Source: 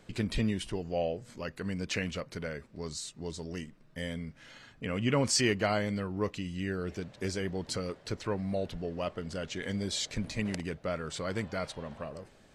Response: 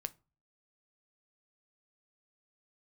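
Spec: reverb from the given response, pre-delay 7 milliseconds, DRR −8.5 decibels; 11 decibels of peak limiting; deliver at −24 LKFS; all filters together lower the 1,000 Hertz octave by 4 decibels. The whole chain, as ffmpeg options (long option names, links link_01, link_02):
-filter_complex "[0:a]equalizer=frequency=1000:width_type=o:gain=-6,alimiter=level_in=3.5dB:limit=-24dB:level=0:latency=1,volume=-3.5dB,asplit=2[link_01][link_02];[1:a]atrim=start_sample=2205,adelay=7[link_03];[link_02][link_03]afir=irnorm=-1:irlink=0,volume=10.5dB[link_04];[link_01][link_04]amix=inputs=2:normalize=0,volume=5.5dB"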